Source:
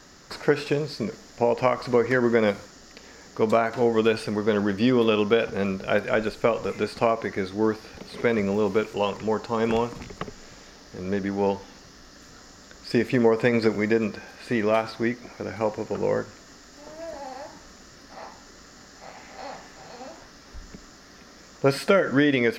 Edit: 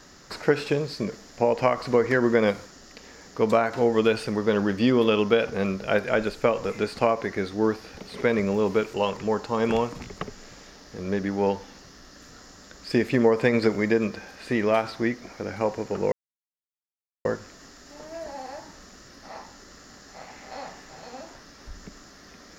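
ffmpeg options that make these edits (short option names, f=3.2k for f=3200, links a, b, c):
-filter_complex "[0:a]asplit=2[a][b];[a]atrim=end=16.12,asetpts=PTS-STARTPTS,afade=t=out:st=16.116:d=0.004:c=hsin,apad=pad_dur=1.13[c];[b]atrim=start=16.12,asetpts=PTS-STARTPTS,afade=t=in:d=0.004:c=hsin[d];[c][d]concat=n=2:v=0:a=1"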